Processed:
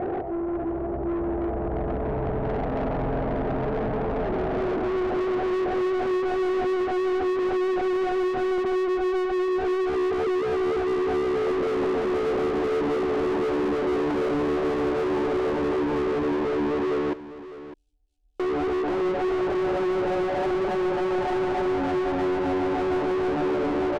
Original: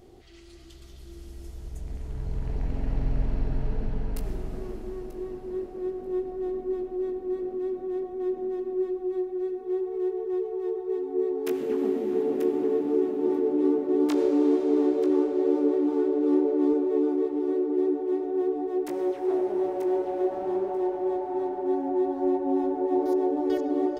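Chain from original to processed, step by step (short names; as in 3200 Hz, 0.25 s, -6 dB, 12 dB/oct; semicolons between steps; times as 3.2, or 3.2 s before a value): Wiener smoothing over 25 samples; 17.13–18.4 inverse Chebyshev band-stop 200–2100 Hz, stop band 80 dB; compressor 3:1, threshold -35 dBFS, peak gain reduction 12.5 dB; low-pass sweep 740 Hz -> 2700 Hz, 14.55–18.43; overdrive pedal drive 41 dB, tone 1400 Hz, clips at -18.5 dBFS; on a send: echo 0.605 s -14.5 dB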